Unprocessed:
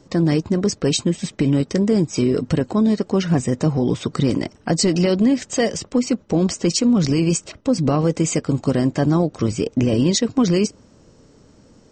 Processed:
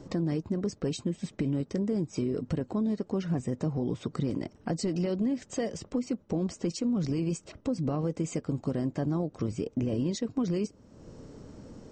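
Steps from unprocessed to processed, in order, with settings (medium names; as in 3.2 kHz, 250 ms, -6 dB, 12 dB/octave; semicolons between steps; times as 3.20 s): compression 2:1, threshold -44 dBFS, peak gain reduction 16.5 dB; tilt shelf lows +4 dB, about 1.3 kHz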